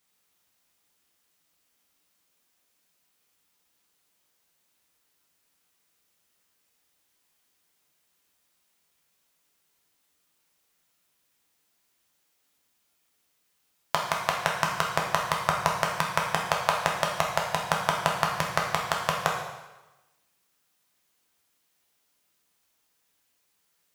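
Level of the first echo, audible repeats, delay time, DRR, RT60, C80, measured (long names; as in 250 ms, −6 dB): no echo audible, no echo audible, no echo audible, −1.5 dB, 1.1 s, 6.5 dB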